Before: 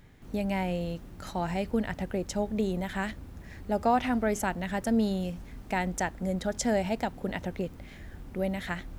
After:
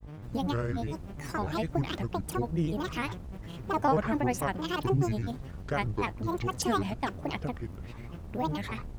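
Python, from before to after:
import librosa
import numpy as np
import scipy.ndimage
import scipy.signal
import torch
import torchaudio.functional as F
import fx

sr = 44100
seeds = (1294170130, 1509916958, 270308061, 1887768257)

y = fx.dmg_buzz(x, sr, base_hz=100.0, harmonics=16, level_db=-43.0, tilt_db=-8, odd_only=False)
y = fx.granulator(y, sr, seeds[0], grain_ms=100.0, per_s=20.0, spray_ms=22.0, spread_st=12)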